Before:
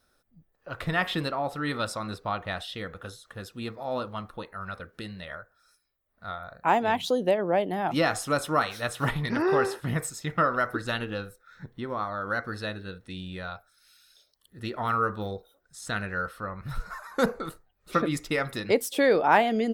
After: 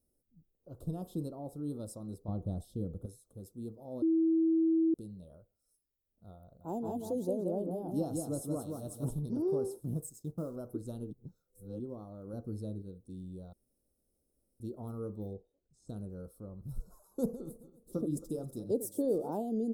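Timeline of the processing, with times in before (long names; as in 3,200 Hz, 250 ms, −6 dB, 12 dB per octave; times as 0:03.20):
0:02.28–0:03.06: low-shelf EQ 400 Hz +11.5 dB
0:04.02–0:04.94: beep over 325 Hz −18.5 dBFS
0:06.43–0:09.19: repeating echo 175 ms, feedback 21%, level −4 dB
0:09.83–0:10.56: mu-law and A-law mismatch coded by A
0:11.11–0:11.80: reverse
0:12.33–0:12.82: low-shelf EQ 330 Hz +6 dB
0:13.53–0:14.60: fill with room tone
0:15.33–0:15.89: high-frequency loss of the air 150 metres
0:17.16–0:19.31: feedback delay that plays each chunk backwards 135 ms, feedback 48%, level −14 dB
whole clip: Chebyshev band-stop filter 360–9,700 Hz, order 2; parametric band 1,800 Hz +2.5 dB 1.5 octaves; level −5.5 dB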